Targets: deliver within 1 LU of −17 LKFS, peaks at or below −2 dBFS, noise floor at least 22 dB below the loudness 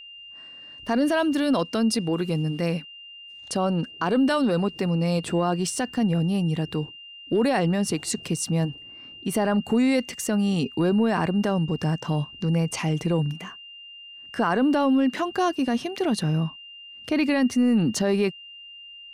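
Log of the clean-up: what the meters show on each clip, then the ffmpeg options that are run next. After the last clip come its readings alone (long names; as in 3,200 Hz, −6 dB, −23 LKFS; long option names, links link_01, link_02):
interfering tone 2,800 Hz; level of the tone −41 dBFS; integrated loudness −24.0 LKFS; sample peak −12.0 dBFS; target loudness −17.0 LKFS
→ -af "bandreject=frequency=2800:width=30"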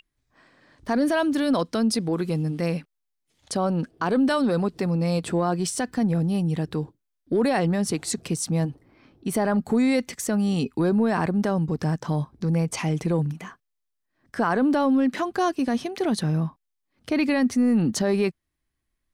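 interfering tone none found; integrated loudness −24.5 LKFS; sample peak −12.0 dBFS; target loudness −17.0 LKFS
→ -af "volume=7.5dB"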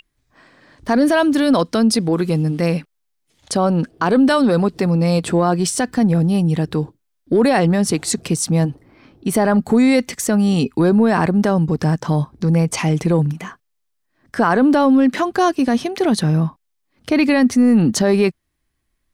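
integrated loudness −17.0 LKFS; sample peak −4.5 dBFS; background noise floor −71 dBFS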